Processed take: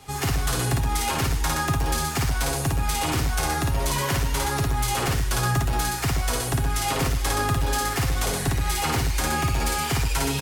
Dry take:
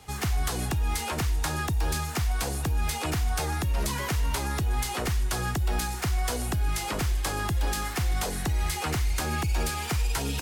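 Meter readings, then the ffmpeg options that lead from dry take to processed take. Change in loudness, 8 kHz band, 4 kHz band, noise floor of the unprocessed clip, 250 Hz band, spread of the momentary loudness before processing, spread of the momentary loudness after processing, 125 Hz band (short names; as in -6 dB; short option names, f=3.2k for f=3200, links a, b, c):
+4.5 dB, +6.0 dB, +5.5 dB, -33 dBFS, +5.0 dB, 1 LU, 1 LU, +4.0 dB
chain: -filter_complex "[0:a]asplit=2[a][b];[b]aecho=0:1:55.39|122.4:0.794|0.562[c];[a][c]amix=inputs=2:normalize=0,asoftclip=type=hard:threshold=-18dB,aecho=1:1:7.4:0.52,volume=2dB"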